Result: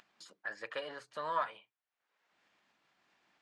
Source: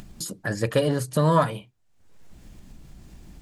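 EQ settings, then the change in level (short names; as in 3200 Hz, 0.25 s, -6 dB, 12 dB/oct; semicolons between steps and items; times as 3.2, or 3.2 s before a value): HPF 1300 Hz 12 dB/oct; tape spacing loss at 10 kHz 33 dB; -1.5 dB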